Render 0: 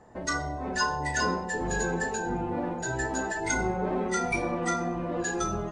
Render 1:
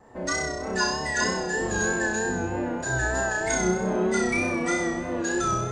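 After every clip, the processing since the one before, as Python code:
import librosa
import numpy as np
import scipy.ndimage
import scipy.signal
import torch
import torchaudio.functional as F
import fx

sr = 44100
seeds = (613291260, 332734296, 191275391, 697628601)

y = fx.room_flutter(x, sr, wall_m=5.5, rt60_s=1.0)
y = fx.vibrato(y, sr, rate_hz=3.2, depth_cents=41.0)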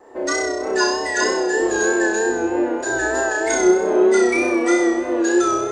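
y = fx.low_shelf_res(x, sr, hz=240.0, db=-12.5, q=3.0)
y = F.gain(torch.from_numpy(y), 4.5).numpy()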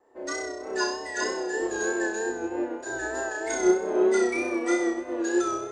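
y = fx.upward_expand(x, sr, threshold_db=-33.0, expansion=1.5)
y = F.gain(torch.from_numpy(y), -5.5).numpy()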